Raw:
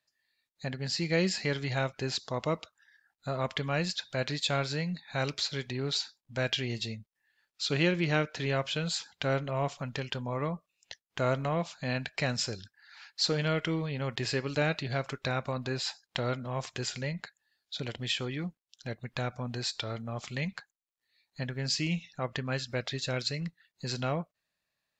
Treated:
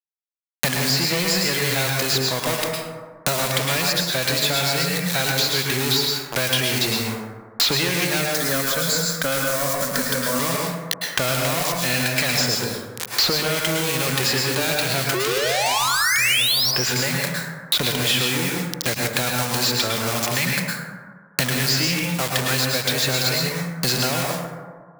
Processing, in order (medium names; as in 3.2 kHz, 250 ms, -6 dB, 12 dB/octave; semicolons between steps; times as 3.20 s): bit crusher 7-bit; 8.22–10.39 s: static phaser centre 550 Hz, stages 8; 15.14–16.71 s: painted sound rise 350–5900 Hz -20 dBFS; waveshaping leveller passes 5; tilt EQ +2 dB/octave; hum notches 50/100/150/200 Hz; plate-style reverb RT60 0.87 s, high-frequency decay 0.45×, pre-delay 95 ms, DRR -0.5 dB; three bands compressed up and down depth 100%; trim -7 dB